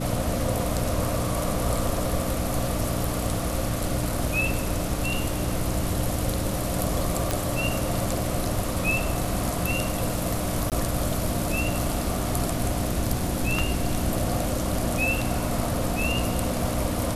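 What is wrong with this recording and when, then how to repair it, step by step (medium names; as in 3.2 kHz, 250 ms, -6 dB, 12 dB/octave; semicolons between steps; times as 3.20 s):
hum 60 Hz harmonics 5 -31 dBFS
7.31 s: pop
10.70–10.72 s: dropout 18 ms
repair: de-click; de-hum 60 Hz, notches 5; interpolate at 10.70 s, 18 ms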